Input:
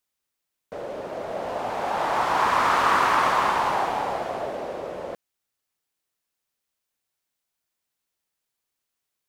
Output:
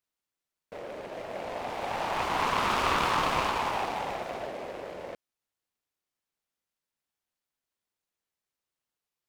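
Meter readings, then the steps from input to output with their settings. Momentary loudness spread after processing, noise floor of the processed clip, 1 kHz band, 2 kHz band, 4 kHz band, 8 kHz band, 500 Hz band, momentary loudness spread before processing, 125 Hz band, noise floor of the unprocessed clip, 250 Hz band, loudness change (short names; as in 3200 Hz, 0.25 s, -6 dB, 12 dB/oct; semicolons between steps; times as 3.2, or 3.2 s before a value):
16 LU, under -85 dBFS, -7.5 dB, -6.0 dB, -1.0 dB, -3.5 dB, -6.0 dB, 16 LU, -0.5 dB, -83 dBFS, -3.0 dB, -6.0 dB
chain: noise-modulated delay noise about 1300 Hz, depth 0.074 ms; gain -6.5 dB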